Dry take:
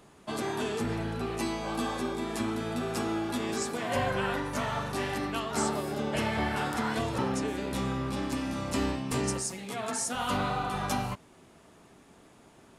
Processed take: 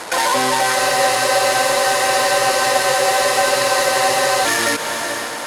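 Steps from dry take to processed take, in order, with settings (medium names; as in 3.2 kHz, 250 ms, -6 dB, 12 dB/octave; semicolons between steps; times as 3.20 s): median filter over 41 samples; steep low-pass 5 kHz 72 dB/octave; tilt EQ +4.5 dB/octave; band-stop 2.5 kHz, Q 16; in parallel at 0 dB: compression, threshold -49 dBFS, peak gain reduction 17 dB; on the sum: saturation -28 dBFS, distortion -17 dB; on a send: echo that smears into a reverb 1160 ms, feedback 52%, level -14 dB; on the sum: speed mistake 33 rpm record played at 78 rpm; loudness maximiser +35 dB; spectral freeze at 0.77 s, 3.68 s; trim -6 dB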